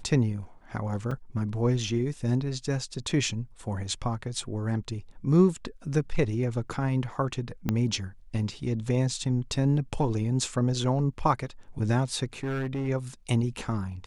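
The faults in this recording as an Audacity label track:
1.110000	1.110000	drop-out 3.9 ms
7.690000	7.690000	click −13 dBFS
12.430000	12.890000	clipping −26.5 dBFS

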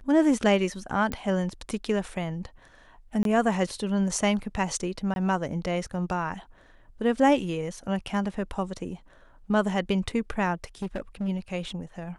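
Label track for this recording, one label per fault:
1.120000	1.120000	click −16 dBFS
3.230000	3.250000	drop-out 22 ms
5.140000	5.160000	drop-out 21 ms
10.540000	11.290000	clipping −26 dBFS

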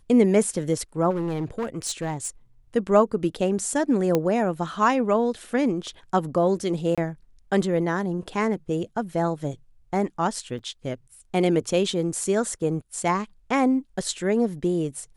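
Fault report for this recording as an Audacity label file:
1.100000	2.290000	clipping −23 dBFS
4.150000	4.150000	click −9 dBFS
6.950000	6.980000	drop-out 26 ms
10.590000	10.600000	drop-out 5.4 ms

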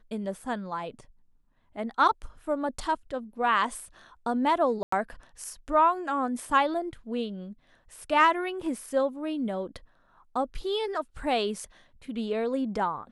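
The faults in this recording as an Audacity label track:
4.830000	4.920000	drop-out 94 ms

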